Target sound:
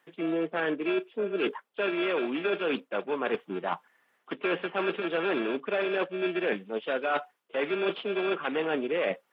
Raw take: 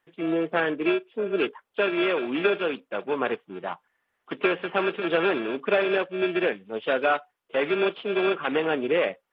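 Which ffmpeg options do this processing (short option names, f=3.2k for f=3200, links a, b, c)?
-af "highpass=f=150:w=0.5412,highpass=f=150:w=1.3066,areverse,acompressor=threshold=-34dB:ratio=5,areverse,volume=7dB"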